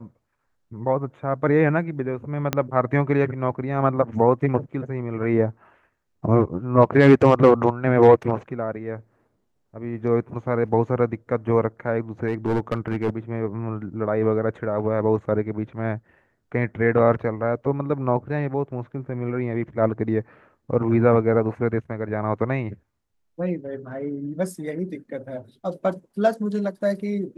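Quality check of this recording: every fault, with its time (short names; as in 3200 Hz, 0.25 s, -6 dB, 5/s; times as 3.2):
2.53 pop -7 dBFS
12.27–13.1 clipped -17.5 dBFS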